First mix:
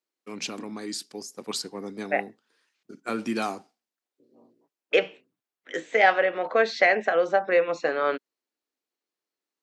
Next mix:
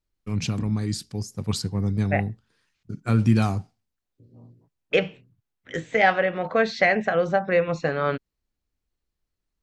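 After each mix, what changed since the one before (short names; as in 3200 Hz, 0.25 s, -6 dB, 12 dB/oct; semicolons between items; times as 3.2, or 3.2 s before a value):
master: remove HPF 290 Hz 24 dB/oct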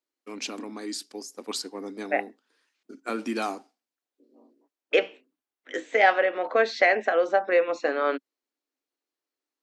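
master: add elliptic high-pass 270 Hz, stop band 50 dB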